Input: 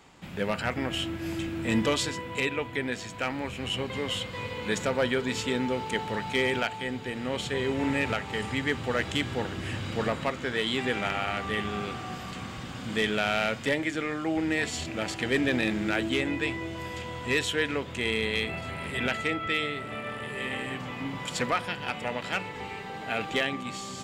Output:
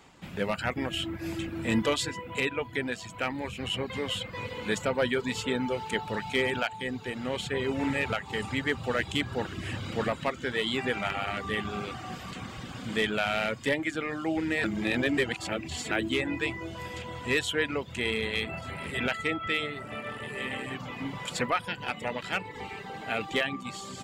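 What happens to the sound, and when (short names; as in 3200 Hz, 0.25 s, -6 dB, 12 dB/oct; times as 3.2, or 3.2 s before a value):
14.64–15.91 reverse
whole clip: reverb removal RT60 0.61 s; dynamic EQ 5800 Hz, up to -4 dB, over -51 dBFS, Q 2.9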